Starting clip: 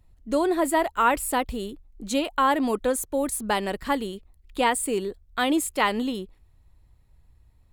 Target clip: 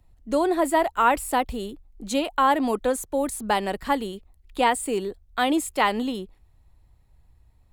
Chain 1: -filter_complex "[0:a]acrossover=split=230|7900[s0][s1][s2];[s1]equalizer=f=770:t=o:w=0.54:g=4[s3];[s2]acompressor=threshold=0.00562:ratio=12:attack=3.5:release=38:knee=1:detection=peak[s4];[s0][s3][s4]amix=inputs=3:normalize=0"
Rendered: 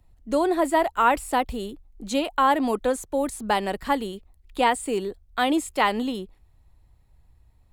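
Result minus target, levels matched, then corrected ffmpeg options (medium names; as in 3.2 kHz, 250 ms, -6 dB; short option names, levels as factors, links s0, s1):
compression: peak gain reduction +9 dB
-filter_complex "[0:a]acrossover=split=230|7900[s0][s1][s2];[s1]equalizer=f=770:t=o:w=0.54:g=4[s3];[s2]acompressor=threshold=0.0178:ratio=12:attack=3.5:release=38:knee=1:detection=peak[s4];[s0][s3][s4]amix=inputs=3:normalize=0"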